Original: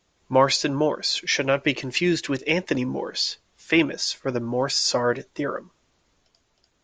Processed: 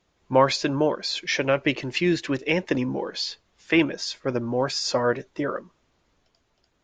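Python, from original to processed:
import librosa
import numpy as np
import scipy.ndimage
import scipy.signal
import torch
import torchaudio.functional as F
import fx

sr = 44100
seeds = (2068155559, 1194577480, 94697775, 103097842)

y = fx.lowpass(x, sr, hz=3500.0, slope=6)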